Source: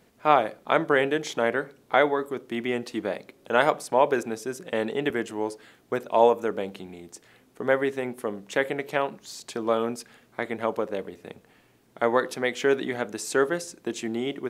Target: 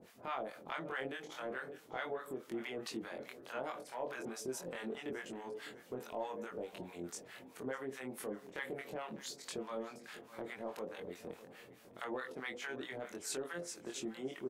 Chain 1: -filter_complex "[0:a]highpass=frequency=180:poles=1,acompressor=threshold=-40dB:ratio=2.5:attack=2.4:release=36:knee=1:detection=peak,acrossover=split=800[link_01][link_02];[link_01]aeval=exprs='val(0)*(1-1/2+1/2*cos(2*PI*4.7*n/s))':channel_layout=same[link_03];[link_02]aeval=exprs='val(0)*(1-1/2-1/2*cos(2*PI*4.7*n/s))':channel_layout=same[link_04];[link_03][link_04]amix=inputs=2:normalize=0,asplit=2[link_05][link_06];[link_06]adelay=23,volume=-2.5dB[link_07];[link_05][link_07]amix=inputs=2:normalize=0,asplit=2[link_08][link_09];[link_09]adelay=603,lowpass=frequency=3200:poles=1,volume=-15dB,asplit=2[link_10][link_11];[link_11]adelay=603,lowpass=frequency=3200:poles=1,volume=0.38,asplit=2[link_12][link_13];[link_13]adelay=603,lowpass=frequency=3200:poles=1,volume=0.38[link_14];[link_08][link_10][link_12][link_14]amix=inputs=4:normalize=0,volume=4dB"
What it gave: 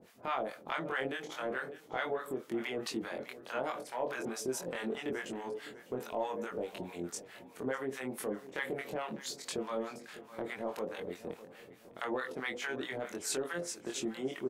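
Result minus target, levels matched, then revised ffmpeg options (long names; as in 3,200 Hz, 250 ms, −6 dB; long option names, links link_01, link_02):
downward compressor: peak gain reduction −5.5 dB
-filter_complex "[0:a]highpass=frequency=180:poles=1,acompressor=threshold=-49dB:ratio=2.5:attack=2.4:release=36:knee=1:detection=peak,acrossover=split=800[link_01][link_02];[link_01]aeval=exprs='val(0)*(1-1/2+1/2*cos(2*PI*4.7*n/s))':channel_layout=same[link_03];[link_02]aeval=exprs='val(0)*(1-1/2-1/2*cos(2*PI*4.7*n/s))':channel_layout=same[link_04];[link_03][link_04]amix=inputs=2:normalize=0,asplit=2[link_05][link_06];[link_06]adelay=23,volume=-2.5dB[link_07];[link_05][link_07]amix=inputs=2:normalize=0,asplit=2[link_08][link_09];[link_09]adelay=603,lowpass=frequency=3200:poles=1,volume=-15dB,asplit=2[link_10][link_11];[link_11]adelay=603,lowpass=frequency=3200:poles=1,volume=0.38,asplit=2[link_12][link_13];[link_13]adelay=603,lowpass=frequency=3200:poles=1,volume=0.38[link_14];[link_08][link_10][link_12][link_14]amix=inputs=4:normalize=0,volume=4dB"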